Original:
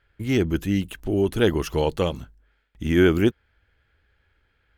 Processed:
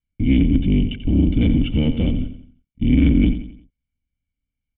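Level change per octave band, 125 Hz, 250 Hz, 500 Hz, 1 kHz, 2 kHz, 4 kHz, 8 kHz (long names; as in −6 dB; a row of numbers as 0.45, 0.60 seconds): +7.5 dB, +6.0 dB, −9.5 dB, below −10 dB, −5.0 dB, −0.5 dB, below −35 dB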